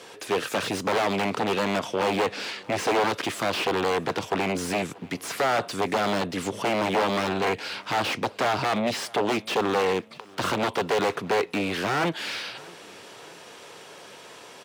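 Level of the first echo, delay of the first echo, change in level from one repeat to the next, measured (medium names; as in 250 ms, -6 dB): -24.0 dB, 636 ms, -5.0 dB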